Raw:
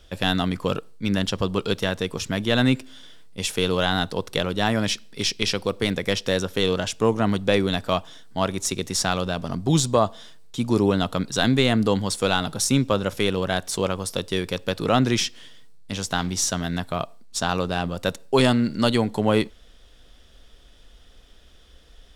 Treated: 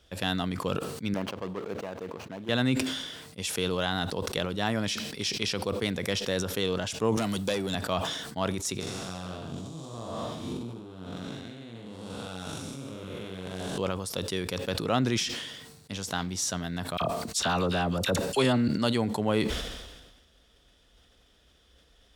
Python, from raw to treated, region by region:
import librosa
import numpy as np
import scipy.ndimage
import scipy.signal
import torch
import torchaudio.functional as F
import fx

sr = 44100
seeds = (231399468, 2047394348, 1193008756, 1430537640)

y = fx.chain(x, sr, fx.median_filter(points=25),
    fx.highpass(hz=480.0, slope=6),
    fx.high_shelf(hz=4900.0, db=-10.0), at=(1.14, 2.49))
y = fx.chain(y, sr, fx.tube_stage(drive_db=15.0, bias=0.35),
    fx.high_shelf(hz=4900.0, db=11.5),
    fx.band_squash(depth_pct=100), at=(7.17, 7.75))
y = fx.chain(y, sr, fx.spec_blur(span_ms=386.0),
    fx.over_compress(threshold_db=-34.0, ratio=-1.0),
    fx.doubler(ms=43.0, db=-2.5), at=(8.8, 13.78))
y = fx.chain(y, sr, fx.dispersion(late='lows', ms=42.0, hz=1400.0),
    fx.env_flatten(amount_pct=50), at=(16.97, 18.68))
y = scipy.signal.sosfilt(scipy.signal.butter(2, 52.0, 'highpass', fs=sr, output='sos'), y)
y = fx.sustainer(y, sr, db_per_s=43.0)
y = F.gain(torch.from_numpy(y), -7.0).numpy()